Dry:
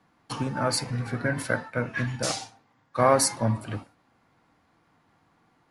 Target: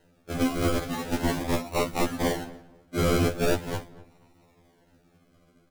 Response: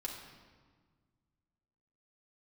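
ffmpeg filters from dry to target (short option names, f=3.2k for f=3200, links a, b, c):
-filter_complex "[0:a]acrusher=samples=38:mix=1:aa=0.000001:lfo=1:lforange=22.8:lforate=0.41,aeval=exprs='(mod(10.6*val(0)+1,2)-1)/10.6':c=same,asplit=2[a][b];[b]adelay=240,lowpass=f=1.5k:p=1,volume=-18.5dB,asplit=2[c][d];[d]adelay=240,lowpass=f=1.5k:p=1,volume=0.29[e];[a][c][e]amix=inputs=3:normalize=0,asplit=2[f][g];[1:a]atrim=start_sample=2205[h];[g][h]afir=irnorm=-1:irlink=0,volume=-19.5dB[i];[f][i]amix=inputs=2:normalize=0,afftfilt=real='re*2*eq(mod(b,4),0)':imag='im*2*eq(mod(b,4),0)':win_size=2048:overlap=0.75,volume=5.5dB"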